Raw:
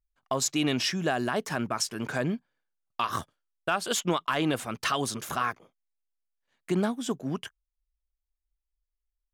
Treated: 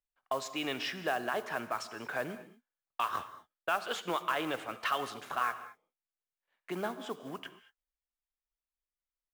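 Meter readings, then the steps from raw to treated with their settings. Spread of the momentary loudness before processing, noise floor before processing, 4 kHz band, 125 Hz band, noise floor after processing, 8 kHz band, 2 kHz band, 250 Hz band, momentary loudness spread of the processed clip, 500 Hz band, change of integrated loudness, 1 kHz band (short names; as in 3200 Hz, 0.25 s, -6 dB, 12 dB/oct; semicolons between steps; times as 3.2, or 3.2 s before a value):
9 LU, -85 dBFS, -7.5 dB, -16.5 dB, under -85 dBFS, -15.5 dB, -3.5 dB, -12.0 dB, 12 LU, -5.5 dB, -6.5 dB, -3.0 dB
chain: three-band isolator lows -14 dB, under 420 Hz, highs -17 dB, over 3500 Hz; modulation noise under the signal 21 dB; non-linear reverb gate 0.25 s flat, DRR 11.5 dB; gain -3 dB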